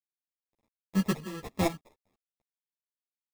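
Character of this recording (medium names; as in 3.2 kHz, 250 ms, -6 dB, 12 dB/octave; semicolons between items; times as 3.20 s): aliases and images of a low sample rate 1.5 kHz, jitter 0%; chopped level 2.1 Hz, depth 65%, duty 50%; a quantiser's noise floor 12-bit, dither none; a shimmering, thickened sound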